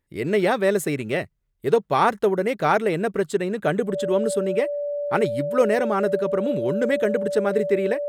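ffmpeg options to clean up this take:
-af "bandreject=f=580:w=30"

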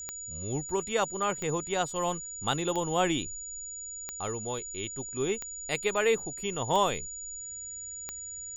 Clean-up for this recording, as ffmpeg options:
-af "adeclick=t=4,bandreject=f=6.9k:w=30"

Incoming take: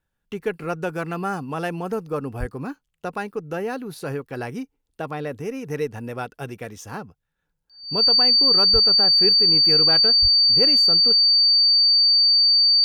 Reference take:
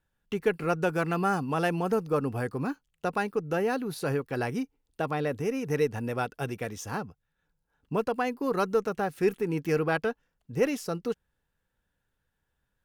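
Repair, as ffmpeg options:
-filter_complex "[0:a]bandreject=f=4.6k:w=30,asplit=3[a][b][c];[a]afade=t=out:st=2.39:d=0.02[d];[b]highpass=f=140:w=0.5412,highpass=f=140:w=1.3066,afade=t=in:st=2.39:d=0.02,afade=t=out:st=2.51:d=0.02[e];[c]afade=t=in:st=2.51:d=0.02[f];[d][e][f]amix=inputs=3:normalize=0,asplit=3[g][h][i];[g]afade=t=out:st=8.72:d=0.02[j];[h]highpass=f=140:w=0.5412,highpass=f=140:w=1.3066,afade=t=in:st=8.72:d=0.02,afade=t=out:st=8.84:d=0.02[k];[i]afade=t=in:st=8.84:d=0.02[l];[j][k][l]amix=inputs=3:normalize=0,asplit=3[m][n][o];[m]afade=t=out:st=10.21:d=0.02[p];[n]highpass=f=140:w=0.5412,highpass=f=140:w=1.3066,afade=t=in:st=10.21:d=0.02,afade=t=out:st=10.33:d=0.02[q];[o]afade=t=in:st=10.33:d=0.02[r];[p][q][r]amix=inputs=3:normalize=0"

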